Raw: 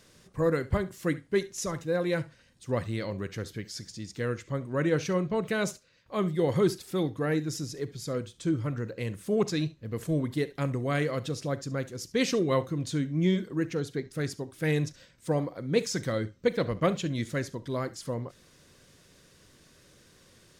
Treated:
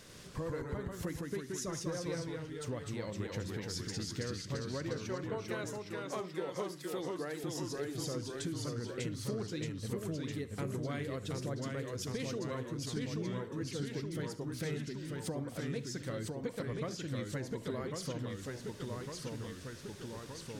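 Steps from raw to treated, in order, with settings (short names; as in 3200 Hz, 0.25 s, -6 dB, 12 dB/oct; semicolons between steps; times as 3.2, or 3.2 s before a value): 4.98–7.44 HPF 310 Hz 12 dB/oct; compressor 10:1, threshold -41 dBFS, peak gain reduction 22 dB; echoes that change speed 96 ms, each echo -1 st, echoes 3; gain +3.5 dB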